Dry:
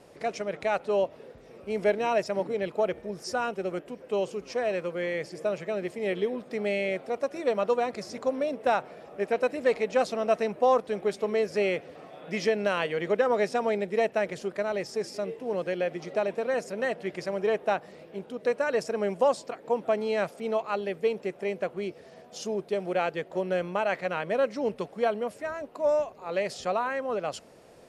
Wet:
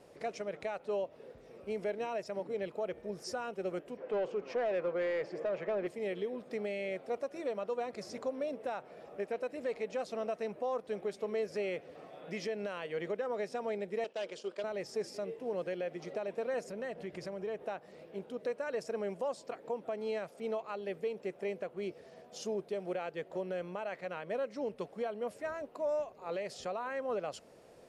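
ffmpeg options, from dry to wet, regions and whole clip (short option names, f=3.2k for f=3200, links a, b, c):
-filter_complex "[0:a]asettb=1/sr,asplit=3[a][b][c];[a]atrim=end=3.974[d];[b]atrim=start=3.97:end=5.87,asetpts=PTS-STARTPTS,afade=t=in:d=0.004:c=qsin,afade=t=out:st=1.896:d=0.004:c=qsin,highpass=56,aemphasis=mode=reproduction:type=50fm,asplit=2[e][f];[f]highpass=f=720:p=1,volume=17dB,asoftclip=type=tanh:threshold=-17dB[g];[e][g]amix=inputs=2:normalize=0,lowpass=f=1.4k:p=1,volume=-6dB[h];[c]atrim=start=5.866[i];[d][h]acrossfade=d=0.004:c1=hsin:c2=qsin[j];[j][i]acrossfade=d=0.004:c1=qsin:c2=hsin,asettb=1/sr,asplit=3[k][l][m];[k]atrim=end=14.044[n];[l]atrim=start=14.04:end=14.64,asetpts=PTS-STARTPTS,afade=t=in:d=0.004:c=qsin,afade=t=out:st=0.596:d=0.004:c=qsin,agate=range=-8dB:threshold=-45dB:ratio=16:release=100:detection=peak,asoftclip=type=hard:threshold=-23.5dB,highpass=350,equalizer=f=720:t=q:w=4:g=-6,equalizer=f=1.9k:t=q:w=4:g=-8,equalizer=f=3.1k:t=q:w=4:g=7,equalizer=f=4.9k:t=q:w=4:g=4,lowpass=f=8.8k:w=0.5412,lowpass=f=8.8k:w=1.3066[o];[m]atrim=start=14.636[p];[n][o]acrossfade=d=0.004:c1=hsin:c2=qsin[q];[q][p]acrossfade=d=0.004:c1=qsin:c2=hsin,asettb=1/sr,asplit=3[r][s][t];[r]atrim=end=16.684[u];[s]atrim=start=16.68:end=17.63,asetpts=PTS-STARTPTS,afade=t=in:d=0.004:c=qsin,afade=t=out:st=0.946:d=0.004:c=qsin,lowshelf=f=150:g=11,acompressor=threshold=-34dB:ratio=3:attack=3.2:release=140:knee=1:detection=peak[v];[t]atrim=start=17.626[w];[u][v]acrossfade=d=0.004:c1=hsin:c2=qsin[x];[x][w]acrossfade=d=0.004:c1=qsin:c2=hsin,alimiter=limit=-23dB:level=0:latency=1:release=253,equalizer=f=490:w=1.5:g=2.5,volume=-6dB"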